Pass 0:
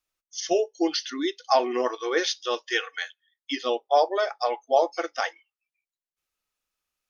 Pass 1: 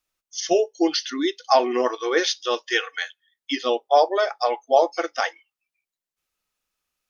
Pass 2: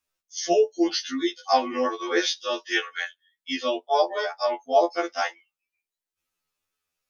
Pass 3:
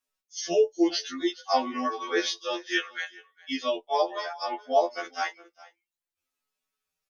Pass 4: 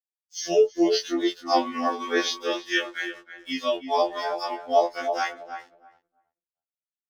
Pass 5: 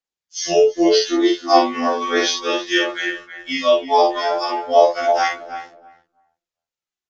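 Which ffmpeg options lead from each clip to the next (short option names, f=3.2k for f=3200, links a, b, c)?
-af "equalizer=f=190:t=o:w=0.77:g=2.5,volume=3.5dB"
-af "afftfilt=real='re*2*eq(mod(b,4),0)':imag='im*2*eq(mod(b,4),0)':win_size=2048:overlap=0.75"
-filter_complex "[0:a]aecho=1:1:410:0.0794,asplit=2[a][b];[b]adelay=5,afreqshift=0.62[c];[a][c]amix=inputs=2:normalize=1"
-filter_complex "[0:a]aeval=exprs='sgn(val(0))*max(abs(val(0))-0.00282,0)':c=same,asplit=2[a][b];[b]adelay=322,lowpass=f=990:p=1,volume=-6dB,asplit=2[c][d];[d]adelay=322,lowpass=f=990:p=1,volume=0.19,asplit=2[e][f];[f]adelay=322,lowpass=f=990:p=1,volume=0.19[g];[c][e][g]amix=inputs=3:normalize=0[h];[a][h]amix=inputs=2:normalize=0,afftfilt=real='re*2*eq(mod(b,4),0)':imag='im*2*eq(mod(b,4),0)':win_size=2048:overlap=0.75"
-filter_complex "[0:a]aresample=16000,aresample=44100,aphaser=in_gain=1:out_gain=1:delay=3:decay=0.33:speed=0.35:type=triangular,asplit=2[a][b];[b]adelay=48,volume=-3.5dB[c];[a][c]amix=inputs=2:normalize=0,volume=6dB"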